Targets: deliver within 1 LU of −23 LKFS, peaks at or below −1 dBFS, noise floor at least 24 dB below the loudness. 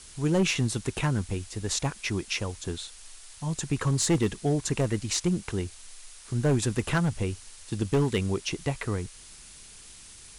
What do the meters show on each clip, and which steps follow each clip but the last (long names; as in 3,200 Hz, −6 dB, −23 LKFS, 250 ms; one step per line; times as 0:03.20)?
share of clipped samples 1.0%; peaks flattened at −18.0 dBFS; background noise floor −49 dBFS; target noise floor −53 dBFS; integrated loudness −28.5 LKFS; sample peak −18.0 dBFS; target loudness −23.0 LKFS
→ clipped peaks rebuilt −18 dBFS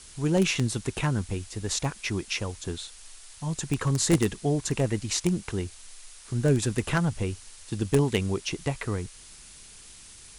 share of clipped samples 0.0%; background noise floor −49 dBFS; target noise floor −52 dBFS
→ broadband denoise 6 dB, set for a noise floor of −49 dBFS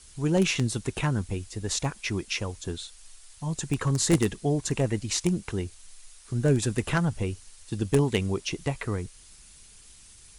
background noise floor −52 dBFS; integrated loudness −28.0 LKFS; sample peak −8.5 dBFS; target loudness −23.0 LKFS
→ level +5 dB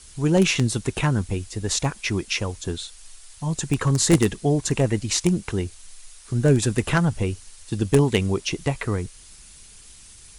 integrated loudness −23.0 LKFS; sample peak −3.5 dBFS; background noise floor −47 dBFS